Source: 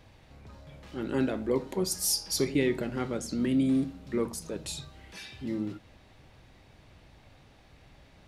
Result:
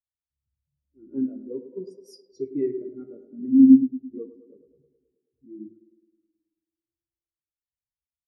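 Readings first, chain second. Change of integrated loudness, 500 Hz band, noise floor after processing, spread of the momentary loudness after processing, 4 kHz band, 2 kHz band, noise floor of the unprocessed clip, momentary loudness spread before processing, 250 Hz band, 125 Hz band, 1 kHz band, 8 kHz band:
+10.5 dB, −2.0 dB, below −85 dBFS, 24 LU, below −20 dB, below −25 dB, −58 dBFS, 17 LU, +9.0 dB, below −10 dB, below −25 dB, below −30 dB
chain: ambience of single reflections 15 ms −10.5 dB, 56 ms −12.5 dB
low-pass that shuts in the quiet parts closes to 340 Hz, open at −25 dBFS
tape delay 107 ms, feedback 90%, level −5 dB, low-pass 2,800 Hz
every bin expanded away from the loudest bin 2.5 to 1
level +8 dB

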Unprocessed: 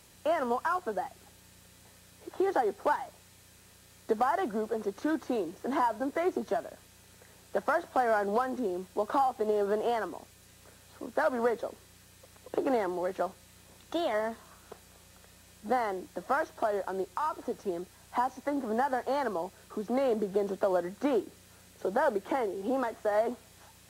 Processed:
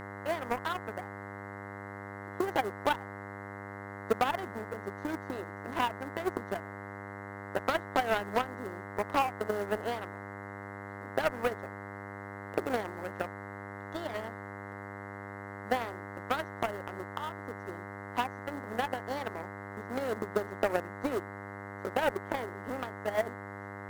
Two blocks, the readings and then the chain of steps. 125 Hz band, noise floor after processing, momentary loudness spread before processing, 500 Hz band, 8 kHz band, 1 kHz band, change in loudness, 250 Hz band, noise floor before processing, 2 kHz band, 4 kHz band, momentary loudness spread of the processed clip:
+7.0 dB, −43 dBFS, 9 LU, −4.5 dB, −1.5 dB, −3.0 dB, −4.5 dB, −4.5 dB, −58 dBFS, +2.0 dB, +4.0 dB, 12 LU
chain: floating-point word with a short mantissa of 4 bits
harmonic generator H 3 −11 dB, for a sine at −18 dBFS
hum with harmonics 100 Hz, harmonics 21, −44 dBFS −2 dB per octave
level +1 dB

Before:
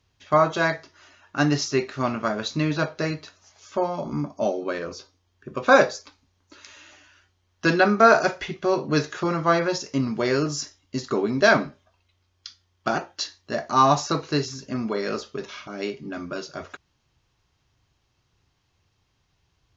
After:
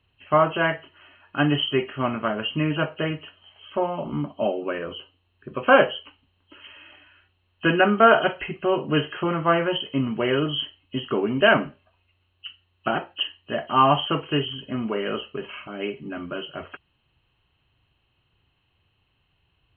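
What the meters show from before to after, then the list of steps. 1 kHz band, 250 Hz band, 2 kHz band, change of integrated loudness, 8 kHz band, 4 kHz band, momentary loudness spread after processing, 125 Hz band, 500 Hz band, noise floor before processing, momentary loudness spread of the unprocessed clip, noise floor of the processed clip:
0.0 dB, 0.0 dB, 0.0 dB, 0.0 dB, can't be measured, +4.5 dB, 17 LU, 0.0 dB, 0.0 dB, −70 dBFS, 16 LU, −70 dBFS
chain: hearing-aid frequency compression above 2,500 Hz 4 to 1

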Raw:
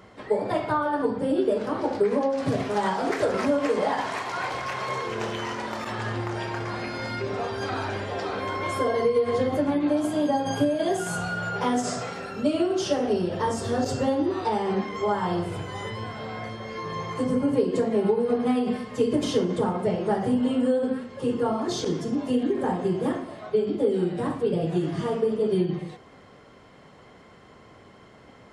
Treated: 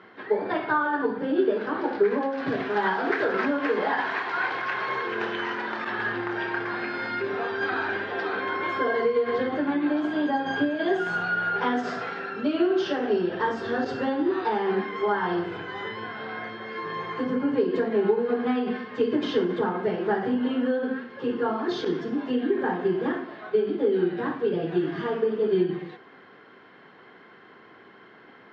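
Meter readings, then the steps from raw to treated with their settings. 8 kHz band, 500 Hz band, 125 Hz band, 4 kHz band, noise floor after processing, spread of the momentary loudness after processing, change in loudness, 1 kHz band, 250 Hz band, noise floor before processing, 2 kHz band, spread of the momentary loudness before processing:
below −15 dB, −0.5 dB, −8.0 dB, −1.5 dB, −51 dBFS, 6 LU, −0.5 dB, +0.5 dB, −1.0 dB, −51 dBFS, +6.5 dB, 7 LU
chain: loudspeaker in its box 230–4,000 Hz, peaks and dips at 370 Hz +4 dB, 580 Hz −7 dB, 1,600 Hz +10 dB

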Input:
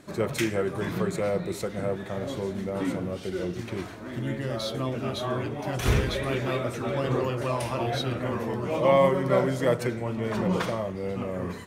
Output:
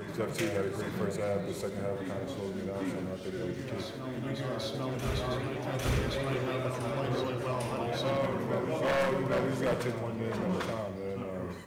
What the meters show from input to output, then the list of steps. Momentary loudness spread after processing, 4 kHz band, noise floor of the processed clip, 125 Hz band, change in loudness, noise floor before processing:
7 LU, −4.5 dB, −40 dBFS, −5.0 dB, −5.0 dB, −39 dBFS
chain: backwards echo 801 ms −5.5 dB
wave folding −16.5 dBFS
feedback echo at a low word length 80 ms, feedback 55%, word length 9 bits, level −11 dB
level −6 dB

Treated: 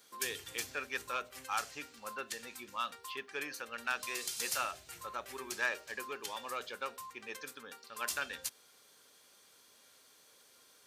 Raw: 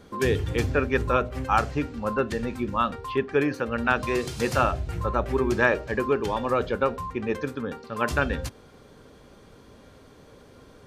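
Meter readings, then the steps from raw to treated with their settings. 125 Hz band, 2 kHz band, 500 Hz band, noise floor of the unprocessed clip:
−33.5 dB, −10.0 dB, −21.0 dB, −52 dBFS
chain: in parallel at −7 dB: soft clipping −20 dBFS, distortion −11 dB
on the sum: first difference

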